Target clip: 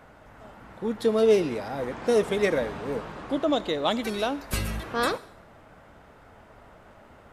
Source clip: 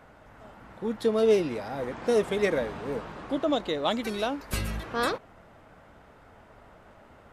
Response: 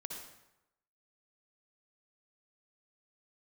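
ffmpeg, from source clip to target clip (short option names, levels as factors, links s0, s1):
-filter_complex "[0:a]asplit=2[s0][s1];[1:a]atrim=start_sample=2205,highshelf=f=4400:g=11[s2];[s1][s2]afir=irnorm=-1:irlink=0,volume=0.158[s3];[s0][s3]amix=inputs=2:normalize=0,volume=1.12"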